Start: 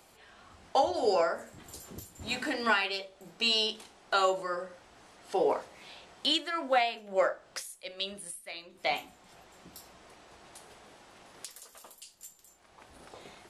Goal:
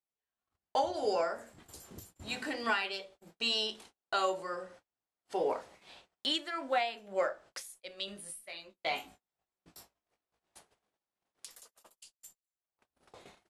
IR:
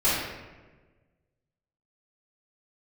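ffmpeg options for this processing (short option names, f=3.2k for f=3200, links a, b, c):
-filter_complex "[0:a]agate=range=-37dB:threshold=-50dB:ratio=16:detection=peak,asettb=1/sr,asplit=3[a][b][c];[a]atrim=end=8.064[d];[b]atrim=start=8.06:end=10.59,asetpts=PTS-STARTPTS,afade=t=in:d=0.004:c=qsin,afade=t=out:st=2.526:d=0.004:c=qsin,asplit=2[e][f];[f]adelay=19,volume=-4dB[g];[e][g]amix=inputs=2:normalize=0,atrim=end_sample=111573[h];[c]atrim=start=10.586[i];[d][h]acrossfade=d=0.004:c1=hsin:c2=qsin[j];[j][i]acrossfade=d=0.004:c1=qsin:c2=hsin,volume=-4.5dB"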